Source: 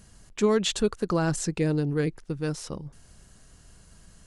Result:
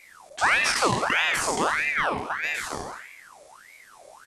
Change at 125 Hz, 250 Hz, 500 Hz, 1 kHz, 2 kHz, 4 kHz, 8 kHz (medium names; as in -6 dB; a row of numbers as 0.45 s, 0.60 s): -10.0 dB, -8.5 dB, -4.5 dB, +11.5 dB, +16.0 dB, +5.0 dB, +4.0 dB